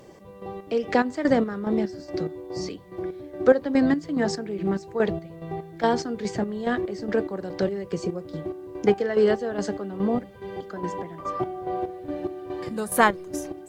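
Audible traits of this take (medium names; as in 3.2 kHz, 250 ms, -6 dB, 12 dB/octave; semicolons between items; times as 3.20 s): chopped level 2.4 Hz, depth 65%, duty 45%; a quantiser's noise floor 12-bit, dither triangular; Vorbis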